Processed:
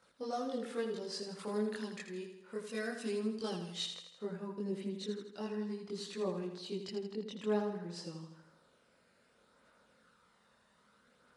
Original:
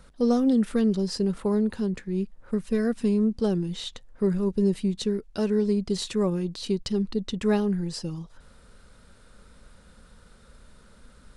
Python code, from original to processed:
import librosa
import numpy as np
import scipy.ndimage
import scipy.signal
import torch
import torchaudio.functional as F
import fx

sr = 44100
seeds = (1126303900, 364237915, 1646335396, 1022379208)

y = fx.weighting(x, sr, curve='A')
y = fx.chorus_voices(y, sr, voices=2, hz=0.31, base_ms=23, depth_ms=1.2, mix_pct=60)
y = fx.high_shelf(y, sr, hz=2300.0, db=fx.steps((0.0, -2.0), (1.38, 6.5), (3.85, -8.0)))
y = fx.echo_feedback(y, sr, ms=81, feedback_pct=53, wet_db=-8.0)
y = F.gain(torch.from_numpy(y), -4.5).numpy()